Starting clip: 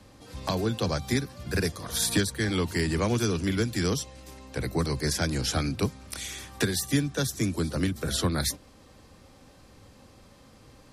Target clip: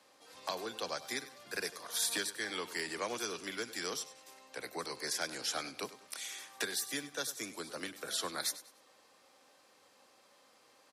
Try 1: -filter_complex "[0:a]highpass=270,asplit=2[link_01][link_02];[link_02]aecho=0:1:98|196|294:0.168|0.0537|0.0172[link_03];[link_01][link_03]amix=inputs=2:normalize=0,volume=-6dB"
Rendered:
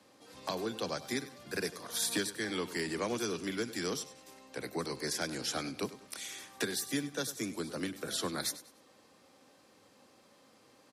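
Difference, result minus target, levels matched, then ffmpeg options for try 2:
250 Hz band +7.5 dB
-filter_complex "[0:a]highpass=560,asplit=2[link_01][link_02];[link_02]aecho=0:1:98|196|294:0.168|0.0537|0.0172[link_03];[link_01][link_03]amix=inputs=2:normalize=0,volume=-6dB"

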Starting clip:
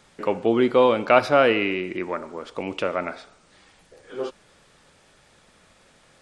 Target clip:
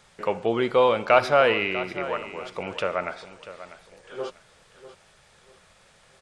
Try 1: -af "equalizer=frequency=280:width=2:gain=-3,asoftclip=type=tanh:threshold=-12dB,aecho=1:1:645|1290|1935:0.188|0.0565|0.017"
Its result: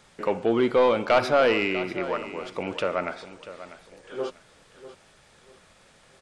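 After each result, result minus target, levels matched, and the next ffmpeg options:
soft clipping: distortion +17 dB; 250 Hz band +4.5 dB
-af "equalizer=frequency=280:width=2:gain=-3,asoftclip=type=tanh:threshold=-1dB,aecho=1:1:645|1290|1935:0.188|0.0565|0.017"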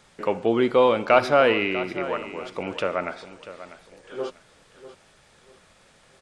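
250 Hz band +4.0 dB
-af "equalizer=frequency=280:width=2:gain=-11,asoftclip=type=tanh:threshold=-1dB,aecho=1:1:645|1290|1935:0.188|0.0565|0.017"

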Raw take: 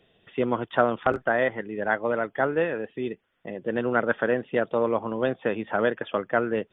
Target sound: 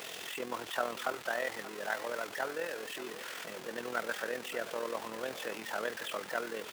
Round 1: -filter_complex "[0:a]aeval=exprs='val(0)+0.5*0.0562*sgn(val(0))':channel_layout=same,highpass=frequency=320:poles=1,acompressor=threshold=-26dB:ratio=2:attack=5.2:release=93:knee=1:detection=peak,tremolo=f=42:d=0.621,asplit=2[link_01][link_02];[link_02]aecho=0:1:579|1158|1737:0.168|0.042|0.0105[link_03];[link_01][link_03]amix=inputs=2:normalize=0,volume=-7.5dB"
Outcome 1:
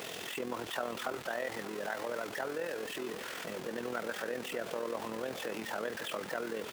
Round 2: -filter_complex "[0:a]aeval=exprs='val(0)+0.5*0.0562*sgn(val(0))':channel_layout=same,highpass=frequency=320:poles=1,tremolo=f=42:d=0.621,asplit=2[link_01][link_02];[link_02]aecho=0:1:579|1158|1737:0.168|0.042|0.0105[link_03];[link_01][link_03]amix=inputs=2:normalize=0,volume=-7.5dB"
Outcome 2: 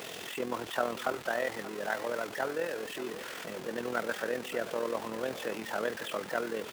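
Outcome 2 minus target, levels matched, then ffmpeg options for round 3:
250 Hz band +4.0 dB
-filter_complex "[0:a]aeval=exprs='val(0)+0.5*0.0562*sgn(val(0))':channel_layout=same,highpass=frequency=850:poles=1,tremolo=f=42:d=0.621,asplit=2[link_01][link_02];[link_02]aecho=0:1:579|1158|1737:0.168|0.042|0.0105[link_03];[link_01][link_03]amix=inputs=2:normalize=0,volume=-7.5dB"

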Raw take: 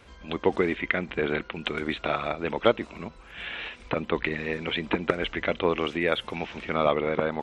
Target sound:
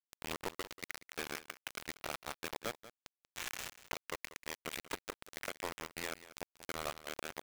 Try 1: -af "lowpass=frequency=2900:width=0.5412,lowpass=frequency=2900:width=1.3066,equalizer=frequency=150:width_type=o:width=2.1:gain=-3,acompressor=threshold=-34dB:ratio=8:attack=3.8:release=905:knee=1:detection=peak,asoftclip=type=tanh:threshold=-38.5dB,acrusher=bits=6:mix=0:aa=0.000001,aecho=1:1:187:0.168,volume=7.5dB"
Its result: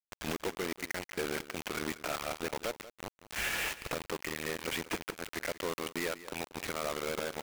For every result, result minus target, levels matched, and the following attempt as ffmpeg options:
downward compressor: peak gain reduction −4.5 dB; 125 Hz band +2.0 dB
-af "lowpass=frequency=2900:width=0.5412,lowpass=frequency=2900:width=1.3066,equalizer=frequency=150:width_type=o:width=2.1:gain=-3,acompressor=threshold=-41.5dB:ratio=8:attack=3.8:release=905:knee=1:detection=peak,asoftclip=type=tanh:threshold=-38.5dB,acrusher=bits=6:mix=0:aa=0.000001,aecho=1:1:187:0.168,volume=7.5dB"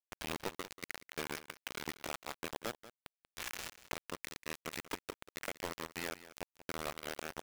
125 Hz band +2.5 dB
-af "lowpass=frequency=2900:width=0.5412,lowpass=frequency=2900:width=1.3066,equalizer=frequency=150:width_type=o:width=2.1:gain=-10.5,acompressor=threshold=-41.5dB:ratio=8:attack=3.8:release=905:knee=1:detection=peak,asoftclip=type=tanh:threshold=-38.5dB,acrusher=bits=6:mix=0:aa=0.000001,aecho=1:1:187:0.168,volume=7.5dB"

